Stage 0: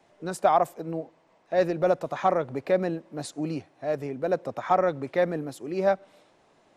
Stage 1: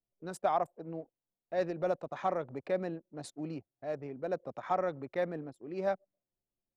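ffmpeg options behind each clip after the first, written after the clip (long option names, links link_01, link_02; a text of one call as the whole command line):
ffmpeg -i in.wav -af "anlmdn=0.398,volume=-9dB" out.wav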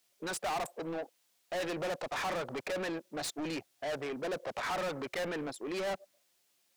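ffmpeg -i in.wav -filter_complex "[0:a]tiltshelf=frequency=1400:gain=-5.5,asplit=2[link_01][link_02];[link_02]highpass=frequency=720:poles=1,volume=35dB,asoftclip=type=tanh:threshold=-20.5dB[link_03];[link_01][link_03]amix=inputs=2:normalize=0,lowpass=frequency=7400:poles=1,volume=-6dB,volume=-7.5dB" out.wav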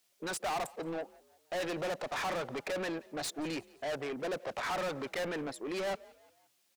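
ffmpeg -i in.wav -filter_complex "[0:a]asplit=4[link_01][link_02][link_03][link_04];[link_02]adelay=174,afreqshift=41,volume=-23.5dB[link_05];[link_03]adelay=348,afreqshift=82,volume=-29.9dB[link_06];[link_04]adelay=522,afreqshift=123,volume=-36.3dB[link_07];[link_01][link_05][link_06][link_07]amix=inputs=4:normalize=0" out.wav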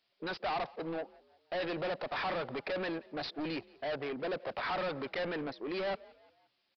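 ffmpeg -i in.wav -af "aresample=11025,aresample=44100" out.wav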